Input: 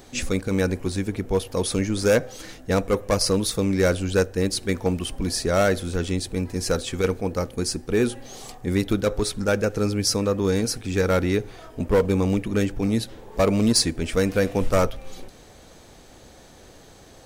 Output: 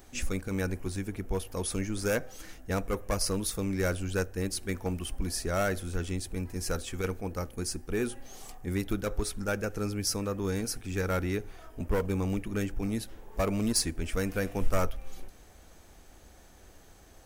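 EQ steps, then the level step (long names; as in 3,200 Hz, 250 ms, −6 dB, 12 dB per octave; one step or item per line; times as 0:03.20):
octave-band graphic EQ 125/250/500/1,000/2,000/4,000/8,000 Hz −10/−6/−9/−5/−4/−10/−5 dB
0.0 dB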